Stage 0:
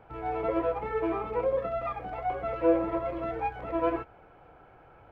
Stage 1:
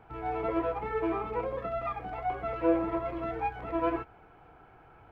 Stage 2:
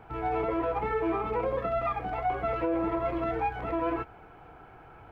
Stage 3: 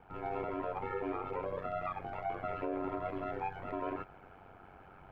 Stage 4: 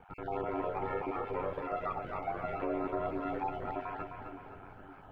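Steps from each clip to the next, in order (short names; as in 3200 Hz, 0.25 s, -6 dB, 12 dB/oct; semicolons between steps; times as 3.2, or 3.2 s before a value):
bell 550 Hz -9.5 dB 0.28 oct
limiter -25.5 dBFS, peak gain reduction 11 dB; gain +5 dB
reverse; upward compressor, threshold -40 dBFS; reverse; ring modulator 47 Hz; gain -5.5 dB
random spectral dropouts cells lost 23%; split-band echo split 320 Hz, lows 0.564 s, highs 0.259 s, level -6.5 dB; gain +2 dB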